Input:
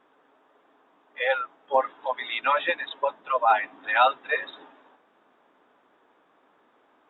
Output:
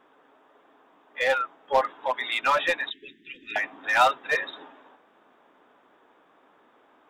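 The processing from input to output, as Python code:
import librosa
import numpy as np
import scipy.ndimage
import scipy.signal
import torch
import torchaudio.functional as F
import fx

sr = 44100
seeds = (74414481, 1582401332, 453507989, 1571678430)

p1 = fx.cheby1_bandstop(x, sr, low_hz=390.0, high_hz=1800.0, order=5, at=(2.9, 3.56))
p2 = 10.0 ** (-24.0 / 20.0) * (np.abs((p1 / 10.0 ** (-24.0 / 20.0) + 3.0) % 4.0 - 2.0) - 1.0)
y = p1 + (p2 * librosa.db_to_amplitude(-7.5))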